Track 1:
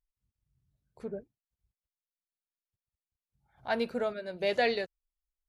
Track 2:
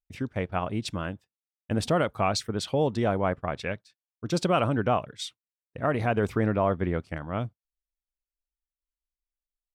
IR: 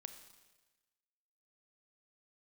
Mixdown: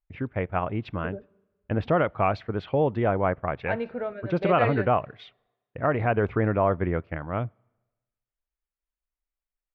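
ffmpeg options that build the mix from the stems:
-filter_complex "[0:a]volume=0.794,asplit=2[s0][s1];[s1]volume=0.596[s2];[1:a]equalizer=f=220:w=2:g=-4,volume=1.26,asplit=2[s3][s4];[s4]volume=0.106[s5];[2:a]atrim=start_sample=2205[s6];[s2][s5]amix=inputs=2:normalize=0[s7];[s7][s6]afir=irnorm=-1:irlink=0[s8];[s0][s3][s8]amix=inputs=3:normalize=0,lowpass=f=2500:w=0.5412,lowpass=f=2500:w=1.3066"

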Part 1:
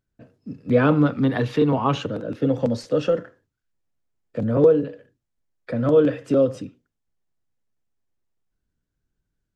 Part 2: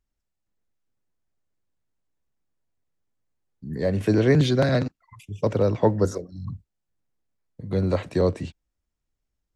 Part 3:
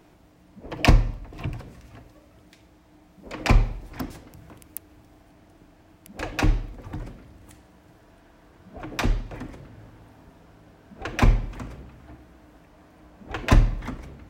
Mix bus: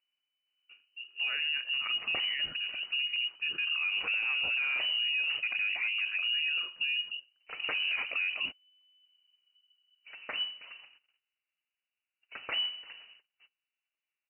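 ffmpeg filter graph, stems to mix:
-filter_complex "[0:a]asubboost=boost=6.5:cutoff=140,adelay=500,volume=0.316[s0];[1:a]agate=range=0.447:threshold=0.00891:ratio=16:detection=peak,equalizer=f=610:t=o:w=1.3:g=10.5,acontrast=45,volume=0.708,asplit=2[s1][s2];[2:a]agate=range=0.0398:threshold=0.00794:ratio=16:detection=peak,acrusher=bits=5:mode=log:mix=0:aa=0.000001,adelay=1300,volume=0.794[s3];[s2]apad=whole_len=687808[s4];[s3][s4]sidechaingate=range=0.355:threshold=0.0224:ratio=16:detection=peak[s5];[s1][s5]amix=inputs=2:normalize=0,equalizer=f=100:w=0.87:g=-7.5,acompressor=threshold=0.126:ratio=6,volume=1[s6];[s0][s6]amix=inputs=2:normalize=0,lowpass=f=2600:t=q:w=0.5098,lowpass=f=2600:t=q:w=0.6013,lowpass=f=2600:t=q:w=0.9,lowpass=f=2600:t=q:w=2.563,afreqshift=-3000,alimiter=level_in=1.06:limit=0.0631:level=0:latency=1:release=35,volume=0.944"

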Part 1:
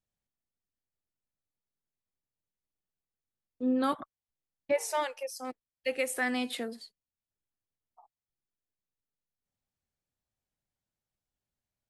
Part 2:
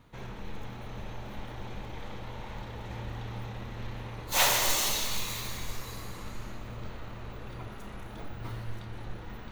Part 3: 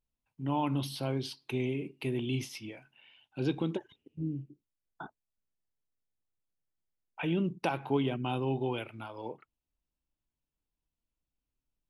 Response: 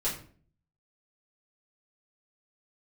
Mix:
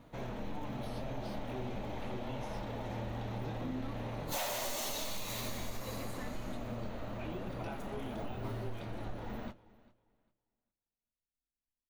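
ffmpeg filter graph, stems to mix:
-filter_complex "[0:a]equalizer=f=250:t=o:w=0.77:g=13,bandreject=f=50:t=h:w=6,bandreject=f=100:t=h:w=6,bandreject=f=150:t=h:w=6,bandreject=f=200:t=h:w=6,bandreject=f=250:t=h:w=6,volume=0.15[s0];[1:a]equalizer=f=250:t=o:w=0.67:g=9,equalizer=f=630:t=o:w=0.67:g=10,equalizer=f=16000:t=o:w=0.67:g=3,volume=1.26,asplit=2[s1][s2];[s2]volume=0.0794[s3];[2:a]flanger=delay=18:depth=6.2:speed=0.23,volume=0.473,asplit=2[s4][s5];[s5]volume=0.158[s6];[s3][s6]amix=inputs=2:normalize=0,aecho=0:1:400|800|1200|1600:1|0.22|0.0484|0.0106[s7];[s0][s1][s4][s7]amix=inputs=4:normalize=0,asoftclip=type=tanh:threshold=0.141,flanger=delay=5.9:depth=4.3:regen=-56:speed=0.78:shape=triangular,acompressor=threshold=0.02:ratio=10"

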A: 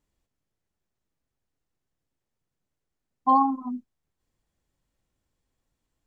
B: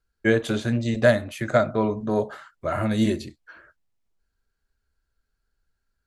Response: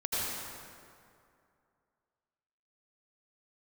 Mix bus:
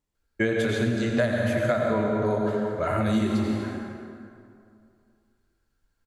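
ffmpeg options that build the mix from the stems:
-filter_complex "[0:a]alimiter=limit=0.075:level=0:latency=1,asoftclip=type=hard:threshold=0.0141,volume=0.473,asplit=2[s0][s1];[s1]volume=0.422[s2];[1:a]equalizer=f=2200:w=6.2:g=3,adelay=150,volume=0.668,asplit=2[s3][s4];[s4]volume=0.531[s5];[2:a]atrim=start_sample=2205[s6];[s2][s5]amix=inputs=2:normalize=0[s7];[s7][s6]afir=irnorm=-1:irlink=0[s8];[s0][s3][s8]amix=inputs=3:normalize=0,acompressor=threshold=0.1:ratio=6"

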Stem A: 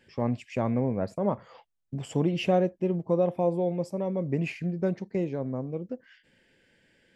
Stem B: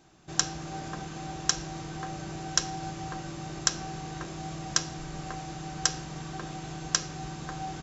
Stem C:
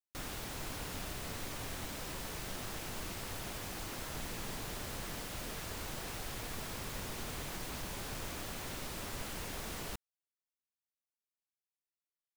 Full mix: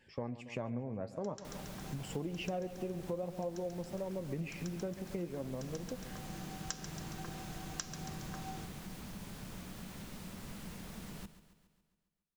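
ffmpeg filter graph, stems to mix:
-filter_complex "[0:a]flanger=delay=1.1:depth=8:regen=62:speed=0.52:shape=sinusoidal,volume=1.06,asplit=3[s0][s1][s2];[s1]volume=0.15[s3];[1:a]adelay=850,volume=0.355,asplit=2[s4][s5];[s5]volume=0.211[s6];[2:a]equalizer=f=190:w=2.2:g=13.5,acrossover=split=200[s7][s8];[s8]acompressor=threshold=0.00794:ratio=6[s9];[s7][s9]amix=inputs=2:normalize=0,adelay=1300,volume=0.501,asplit=2[s10][s11];[s11]volume=0.2[s12];[s2]apad=whole_len=382382[s13];[s4][s13]sidechaincompress=threshold=0.00447:ratio=8:attack=16:release=439[s14];[s3][s6][s12]amix=inputs=3:normalize=0,aecho=0:1:138|276|414|552|690|828|966|1104:1|0.56|0.314|0.176|0.0983|0.0551|0.0308|0.0173[s15];[s0][s14][s10][s15]amix=inputs=4:normalize=0,acompressor=threshold=0.0141:ratio=4"

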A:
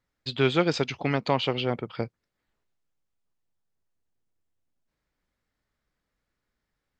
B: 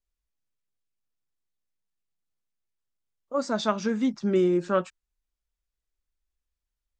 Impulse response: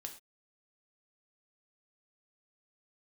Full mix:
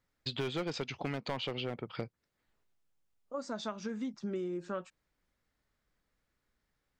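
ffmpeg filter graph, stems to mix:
-filter_complex "[0:a]asoftclip=type=hard:threshold=0.119,volume=1[s0];[1:a]volume=0.447[s1];[s0][s1]amix=inputs=2:normalize=0,acompressor=threshold=0.0178:ratio=4"

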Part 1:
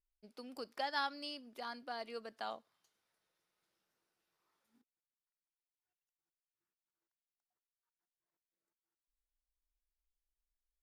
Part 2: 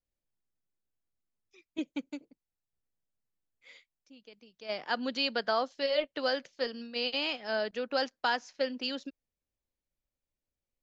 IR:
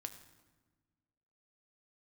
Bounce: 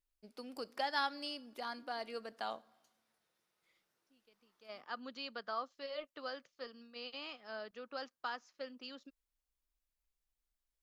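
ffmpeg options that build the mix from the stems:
-filter_complex "[0:a]volume=1,asplit=3[s0][s1][s2];[s1]volume=0.376[s3];[1:a]equalizer=f=1200:w=4.8:g=12,volume=0.188[s4];[s2]apad=whole_len=477168[s5];[s4][s5]sidechaincompress=threshold=0.00112:ratio=8:attack=16:release=1390[s6];[2:a]atrim=start_sample=2205[s7];[s3][s7]afir=irnorm=-1:irlink=0[s8];[s0][s6][s8]amix=inputs=3:normalize=0"

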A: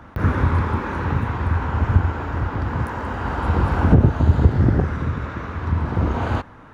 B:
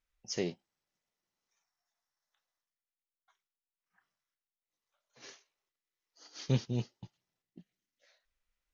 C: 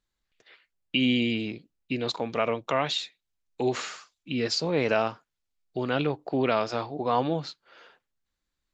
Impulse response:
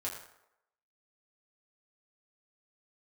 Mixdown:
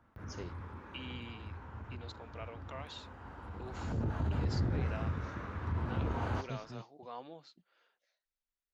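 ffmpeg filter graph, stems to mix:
-filter_complex "[0:a]alimiter=limit=0.224:level=0:latency=1:release=22,flanger=delay=8.6:depth=3.5:regen=79:speed=0.51:shape=triangular,volume=0.398,afade=t=in:st=3.7:d=0.45:silence=0.251189[s0];[1:a]volume=0.224[s1];[2:a]highpass=f=380:p=1,volume=0.106[s2];[s0][s1][s2]amix=inputs=3:normalize=0"

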